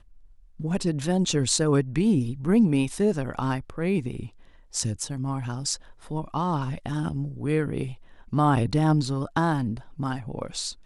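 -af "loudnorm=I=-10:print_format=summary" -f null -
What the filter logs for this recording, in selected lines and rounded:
Input Integrated:    -26.1 LUFS
Input True Peak:      -6.5 dBTP
Input LRA:             5.4 LU
Input Threshold:     -36.4 LUFS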